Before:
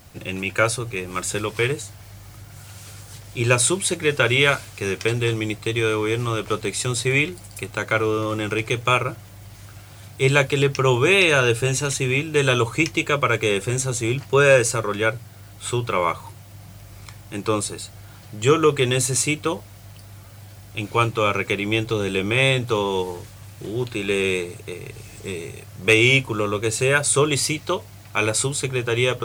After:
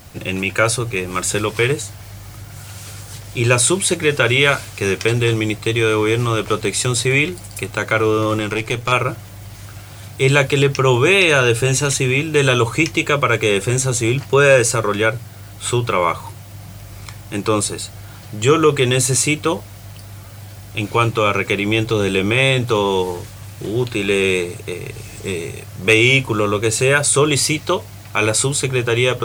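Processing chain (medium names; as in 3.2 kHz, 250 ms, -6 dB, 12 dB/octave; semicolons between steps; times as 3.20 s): in parallel at +1 dB: peak limiter -15 dBFS, peak gain reduction 9.5 dB; 8.39–8.92 s: on the sum: valve stage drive 11 dB, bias 0.55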